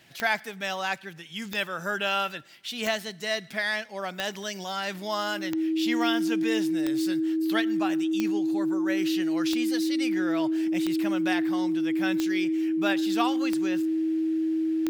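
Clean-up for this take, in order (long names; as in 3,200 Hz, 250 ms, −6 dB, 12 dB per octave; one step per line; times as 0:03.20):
click removal
notch filter 320 Hz, Q 30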